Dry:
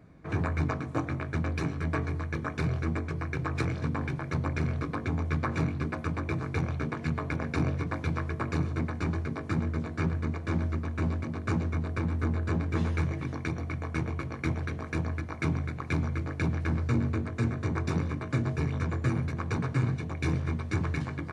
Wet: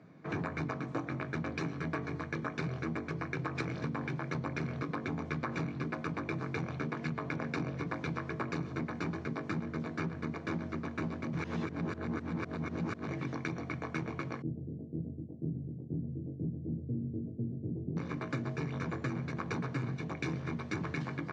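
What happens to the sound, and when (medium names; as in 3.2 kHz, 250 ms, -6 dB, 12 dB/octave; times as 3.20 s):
11.33–13.08 s: reverse
14.42–17.97 s: Gaussian low-pass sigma 22 samples
whole clip: high-pass 130 Hz 24 dB/octave; compression, threshold -32 dBFS; low-pass 6.6 kHz 24 dB/octave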